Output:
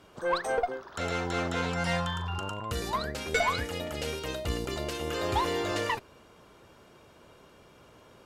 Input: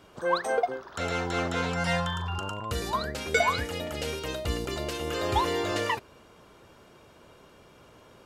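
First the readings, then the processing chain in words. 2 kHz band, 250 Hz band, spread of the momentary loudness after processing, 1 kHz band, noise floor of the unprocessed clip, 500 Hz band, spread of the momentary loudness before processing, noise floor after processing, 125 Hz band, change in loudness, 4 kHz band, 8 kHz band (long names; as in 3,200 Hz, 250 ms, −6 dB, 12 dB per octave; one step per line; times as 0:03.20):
−2.0 dB, −1.5 dB, 6 LU, −2.0 dB, −55 dBFS, −2.0 dB, 6 LU, −57 dBFS, −1.5 dB, −2.0 dB, −1.5 dB, −1.5 dB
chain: tube saturation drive 18 dB, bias 0.4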